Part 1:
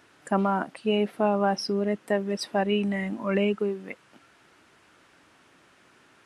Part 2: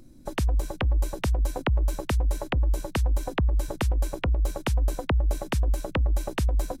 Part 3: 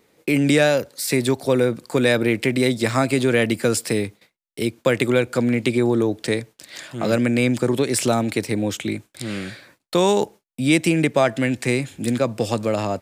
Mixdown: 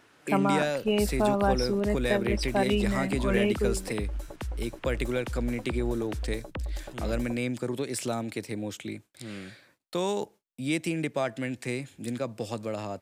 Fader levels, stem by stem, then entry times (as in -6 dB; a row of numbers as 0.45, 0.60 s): -1.5, -10.0, -11.5 dB; 0.00, 0.60, 0.00 s